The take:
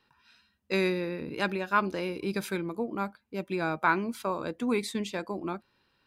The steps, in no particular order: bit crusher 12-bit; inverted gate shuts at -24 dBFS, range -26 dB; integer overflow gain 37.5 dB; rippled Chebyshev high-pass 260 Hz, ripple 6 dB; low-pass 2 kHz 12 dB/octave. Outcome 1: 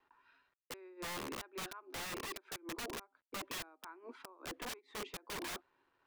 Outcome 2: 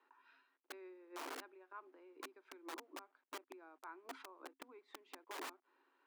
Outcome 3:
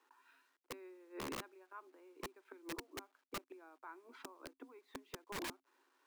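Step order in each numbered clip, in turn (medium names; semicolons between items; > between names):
rippled Chebyshev high-pass > bit crusher > inverted gate > low-pass > integer overflow; inverted gate > bit crusher > low-pass > integer overflow > rippled Chebyshev high-pass; inverted gate > low-pass > bit crusher > rippled Chebyshev high-pass > integer overflow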